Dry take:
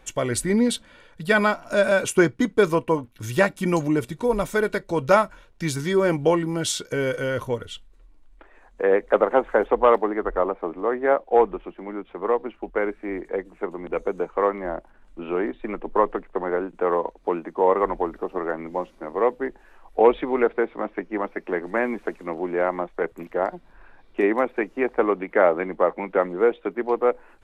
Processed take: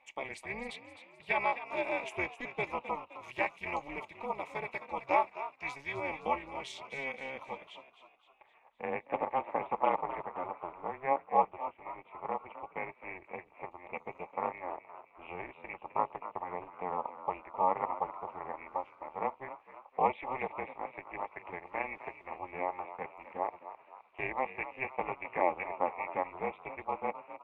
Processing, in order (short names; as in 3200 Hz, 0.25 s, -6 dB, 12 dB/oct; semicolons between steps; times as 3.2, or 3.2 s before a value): double band-pass 1400 Hz, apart 1.4 oct; AM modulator 270 Hz, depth 75%; frequency-shifting echo 0.259 s, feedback 48%, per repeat +64 Hz, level -12.5 dB; gain +2.5 dB